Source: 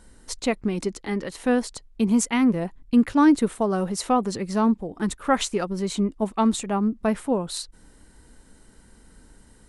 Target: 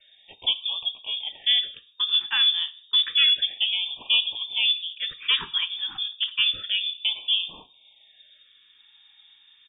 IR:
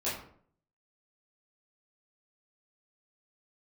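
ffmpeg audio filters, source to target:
-filter_complex "[0:a]asplit=3[a][b][c];[b]asetrate=29433,aresample=44100,atempo=1.49831,volume=-16dB[d];[c]asetrate=37084,aresample=44100,atempo=1.18921,volume=-15dB[e];[a][d][e]amix=inputs=3:normalize=0,highpass=57,equalizer=f=200:w=6.3:g=-13.5,bandreject=f=1.6k:w=7.1,adynamicequalizer=threshold=0.0178:dfrequency=410:dqfactor=1.7:tfrequency=410:tqfactor=1.7:attack=5:release=100:ratio=0.375:range=2:mode=cutabove:tftype=bell,asoftclip=type=hard:threshold=-16dB,asplit=2[f][g];[1:a]atrim=start_sample=2205,afade=t=out:st=0.39:d=0.01,atrim=end_sample=17640[h];[g][h]afir=irnorm=-1:irlink=0,volume=-18dB[i];[f][i]amix=inputs=2:normalize=0,lowpass=f=3.1k:t=q:w=0.5098,lowpass=f=3.1k:t=q:w=0.6013,lowpass=f=3.1k:t=q:w=0.9,lowpass=f=3.1k:t=q:w=2.563,afreqshift=-3700,afftfilt=real='re*(1-between(b*sr/1024,530*pow(1700/530,0.5+0.5*sin(2*PI*0.3*pts/sr))/1.41,530*pow(1700/530,0.5+0.5*sin(2*PI*0.3*pts/sr))*1.41))':imag='im*(1-between(b*sr/1024,530*pow(1700/530,0.5+0.5*sin(2*PI*0.3*pts/sr))/1.41,530*pow(1700/530,0.5+0.5*sin(2*PI*0.3*pts/sr))*1.41))':win_size=1024:overlap=0.75"

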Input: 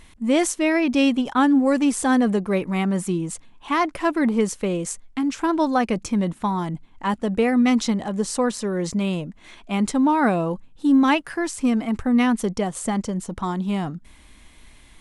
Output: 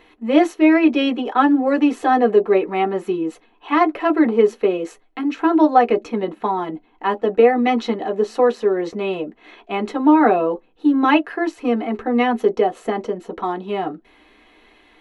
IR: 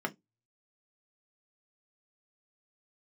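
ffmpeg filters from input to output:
-filter_complex "[0:a]equalizer=f=7.3k:w=0.59:g=-14[a];[1:a]atrim=start_sample=2205,asetrate=88200,aresample=44100[b];[a][b]afir=irnorm=-1:irlink=0,volume=5.5dB"

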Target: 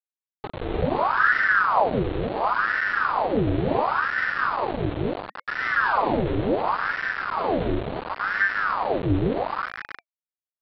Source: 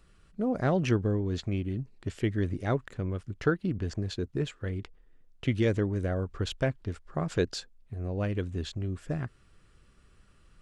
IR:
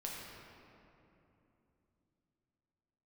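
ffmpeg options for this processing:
-filter_complex "[0:a]tiltshelf=f=660:g=6.5,aecho=1:1:207|242:0.794|0.501,agate=range=-33dB:threshold=-43dB:ratio=3:detection=peak,asplit=2[a][b];[b]adelay=41,volume=-4dB[c];[a][c]amix=inputs=2:normalize=0,acrossover=split=470[d][e];[e]acompressor=threshold=-40dB:ratio=6[f];[d][f]amix=inputs=2:normalize=0[g];[1:a]atrim=start_sample=2205[h];[g][h]afir=irnorm=-1:irlink=0,aresample=8000,aeval=exprs='val(0)*gte(abs(val(0)),0.0668)':c=same,aresample=44100,bandreject=f=820:w=27,aeval=exprs='val(0)*sin(2*PI*930*n/s+930*0.8/0.71*sin(2*PI*0.71*n/s))':c=same,volume=-1.5dB"

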